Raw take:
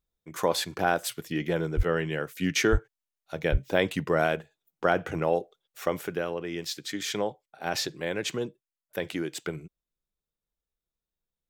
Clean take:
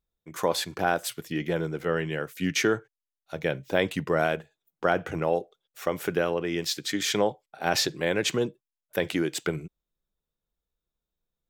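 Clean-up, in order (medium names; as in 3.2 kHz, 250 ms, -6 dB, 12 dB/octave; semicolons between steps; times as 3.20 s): de-plosive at 1.76/2.71/3.51 s; gain correction +5 dB, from 6.01 s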